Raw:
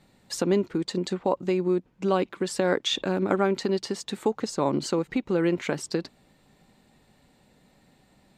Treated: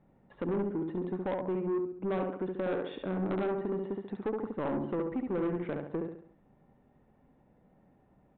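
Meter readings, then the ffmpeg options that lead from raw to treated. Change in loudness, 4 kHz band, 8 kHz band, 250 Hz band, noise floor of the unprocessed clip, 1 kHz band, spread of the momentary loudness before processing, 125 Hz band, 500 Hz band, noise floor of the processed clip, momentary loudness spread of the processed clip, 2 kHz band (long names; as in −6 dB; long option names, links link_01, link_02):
−7.5 dB, −23.5 dB, below −40 dB, −6.5 dB, −62 dBFS, −8.5 dB, 5 LU, −6.5 dB, −7.0 dB, −66 dBFS, 4 LU, −11.0 dB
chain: -af "lowpass=1100,aecho=1:1:69|138|207|276|345:0.596|0.244|0.1|0.0411|0.0168,aresample=8000,asoftclip=type=tanh:threshold=-22.5dB,aresample=44100,volume=-4.5dB"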